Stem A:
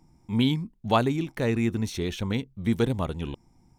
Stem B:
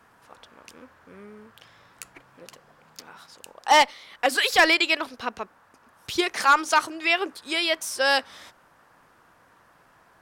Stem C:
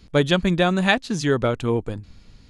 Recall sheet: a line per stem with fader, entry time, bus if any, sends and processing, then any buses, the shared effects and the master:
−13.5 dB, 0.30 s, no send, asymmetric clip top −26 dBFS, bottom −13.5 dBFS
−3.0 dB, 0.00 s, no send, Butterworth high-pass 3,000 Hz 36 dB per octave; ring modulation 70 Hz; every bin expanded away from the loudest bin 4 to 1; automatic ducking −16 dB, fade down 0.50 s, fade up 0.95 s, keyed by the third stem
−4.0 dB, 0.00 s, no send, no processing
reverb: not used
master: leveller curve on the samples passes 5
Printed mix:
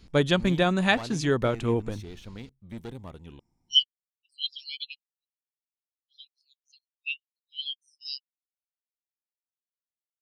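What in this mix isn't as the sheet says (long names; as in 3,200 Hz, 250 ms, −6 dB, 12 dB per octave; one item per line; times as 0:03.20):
stem A: entry 0.30 s → 0.05 s
stem B −3.0 dB → +5.5 dB
master: missing leveller curve on the samples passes 5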